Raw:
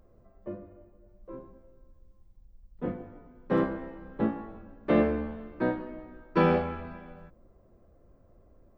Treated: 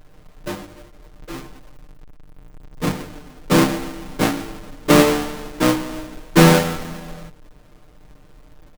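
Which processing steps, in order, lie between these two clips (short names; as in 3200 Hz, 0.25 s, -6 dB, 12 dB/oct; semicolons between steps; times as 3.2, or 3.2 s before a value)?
half-waves squared off; comb 6.6 ms, depth 70%; gain +5.5 dB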